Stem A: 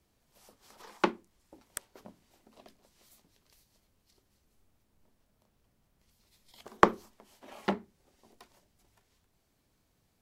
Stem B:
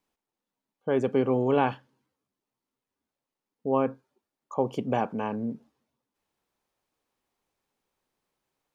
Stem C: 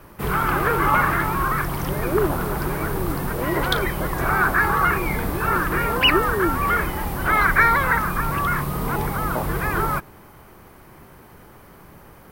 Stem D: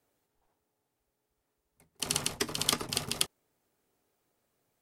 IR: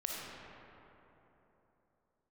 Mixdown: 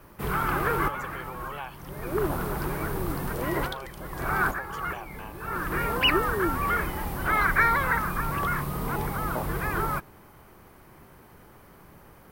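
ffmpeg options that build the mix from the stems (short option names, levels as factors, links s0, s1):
-filter_complex "[0:a]adelay=1600,volume=0.133[s0];[1:a]highpass=880,aemphasis=mode=production:type=bsi,acompressor=threshold=0.00282:ratio=1.5,volume=1,asplit=2[s1][s2];[2:a]volume=0.531[s3];[3:a]acompressor=threshold=0.0316:ratio=6,adelay=1250,volume=0.106[s4];[s2]apad=whole_len=543036[s5];[s3][s5]sidechaincompress=threshold=0.00355:ratio=10:attack=22:release=550[s6];[s0][s1][s6][s4]amix=inputs=4:normalize=0"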